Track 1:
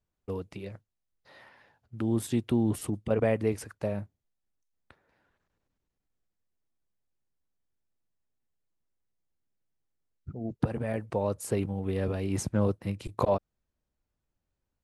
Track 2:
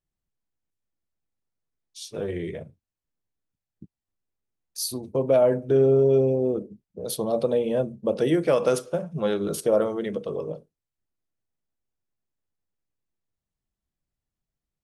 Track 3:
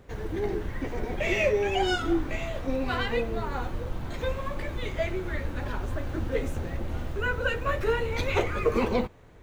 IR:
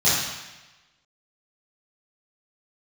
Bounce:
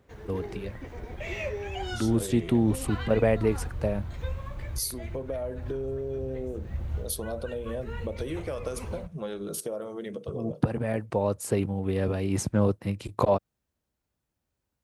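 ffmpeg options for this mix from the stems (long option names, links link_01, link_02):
-filter_complex "[0:a]volume=3dB[link_01];[1:a]acompressor=threshold=-25dB:ratio=6,crystalizer=i=1:c=0,volume=-6dB,asplit=2[link_02][link_03];[2:a]asubboost=boost=7:cutoff=110,volume=-8.5dB[link_04];[link_03]apad=whole_len=415708[link_05];[link_04][link_05]sidechaincompress=threshold=-41dB:ratio=8:attack=39:release=294[link_06];[link_01][link_02][link_06]amix=inputs=3:normalize=0,highpass=55"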